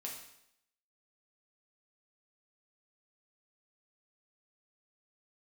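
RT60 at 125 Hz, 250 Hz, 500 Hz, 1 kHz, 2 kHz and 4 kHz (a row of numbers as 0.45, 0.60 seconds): 0.70, 0.75, 0.75, 0.75, 0.75, 0.75 seconds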